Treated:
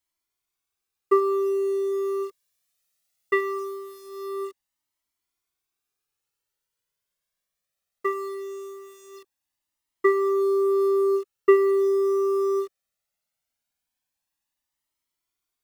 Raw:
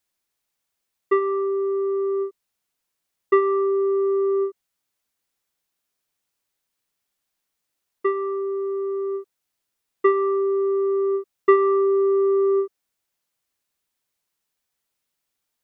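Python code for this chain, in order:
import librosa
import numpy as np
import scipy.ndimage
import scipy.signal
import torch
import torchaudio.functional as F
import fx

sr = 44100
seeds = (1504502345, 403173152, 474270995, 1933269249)

p1 = fx.high_shelf(x, sr, hz=2300.0, db=9.5, at=(1.91, 3.58), fade=0.02)
p2 = fx.quant_dither(p1, sr, seeds[0], bits=6, dither='none')
p3 = p1 + (p2 * librosa.db_to_amplitude(-8.5))
y = fx.comb_cascade(p3, sr, direction='rising', hz=0.2)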